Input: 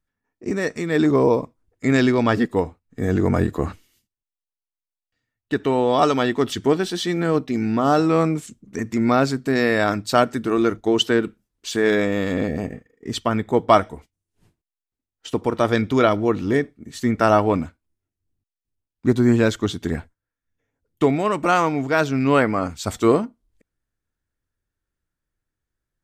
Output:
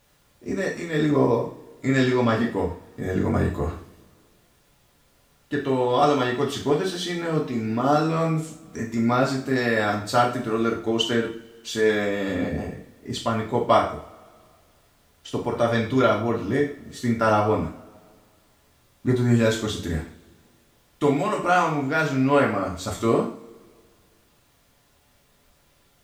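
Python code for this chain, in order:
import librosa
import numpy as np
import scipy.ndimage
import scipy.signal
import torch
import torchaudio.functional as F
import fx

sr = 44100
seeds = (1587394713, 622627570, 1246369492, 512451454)

y = fx.high_shelf(x, sr, hz=4500.0, db=6.5, at=(19.3, 21.34))
y = fx.dmg_noise_colour(y, sr, seeds[0], colour='pink', level_db=-58.0)
y = fx.rev_double_slope(y, sr, seeds[1], early_s=0.44, late_s=2.1, knee_db=-25, drr_db=-2.5)
y = F.gain(torch.from_numpy(y), -7.0).numpy()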